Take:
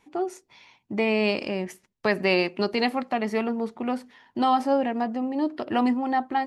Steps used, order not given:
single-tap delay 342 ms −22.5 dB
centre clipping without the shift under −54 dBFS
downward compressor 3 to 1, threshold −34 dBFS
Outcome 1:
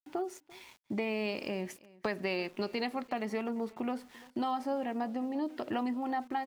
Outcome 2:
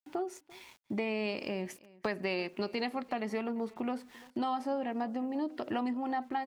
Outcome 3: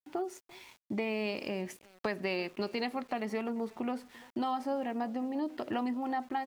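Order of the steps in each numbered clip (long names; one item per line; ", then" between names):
downward compressor, then centre clipping without the shift, then single-tap delay
centre clipping without the shift, then downward compressor, then single-tap delay
downward compressor, then single-tap delay, then centre clipping without the shift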